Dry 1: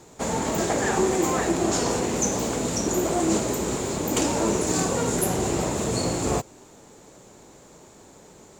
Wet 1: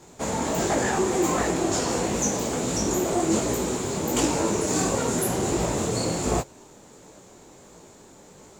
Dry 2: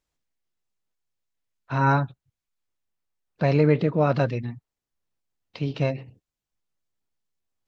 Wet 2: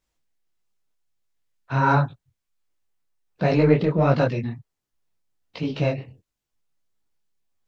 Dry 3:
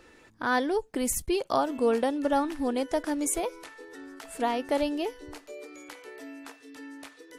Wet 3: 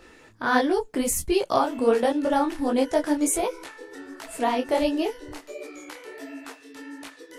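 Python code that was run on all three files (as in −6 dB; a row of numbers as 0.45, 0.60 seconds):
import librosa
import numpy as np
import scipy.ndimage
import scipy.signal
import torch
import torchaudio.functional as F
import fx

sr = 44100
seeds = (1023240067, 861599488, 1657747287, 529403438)

p1 = 10.0 ** (-18.5 / 20.0) * np.tanh(x / 10.0 ** (-18.5 / 20.0))
p2 = x + F.gain(torch.from_numpy(p1), -7.5).numpy()
p3 = fx.detune_double(p2, sr, cents=49)
y = p3 * 10.0 ** (-26 / 20.0) / np.sqrt(np.mean(np.square(p3)))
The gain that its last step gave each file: +1.0, +4.0, +5.0 decibels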